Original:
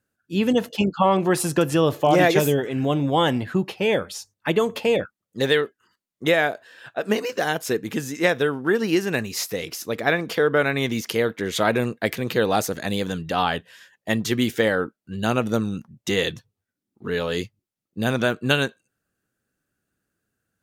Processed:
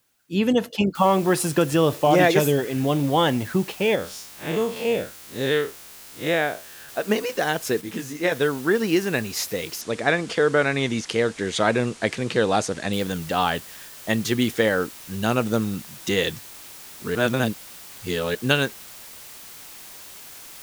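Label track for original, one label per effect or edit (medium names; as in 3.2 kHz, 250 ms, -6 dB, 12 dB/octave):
0.950000	0.950000	noise floor step -69 dB -42 dB
3.950000	6.890000	spectral blur width 99 ms
7.810000	8.320000	detune thickener each way 33 cents
9.810000	12.930000	steep low-pass 9.3 kHz
17.150000	18.350000	reverse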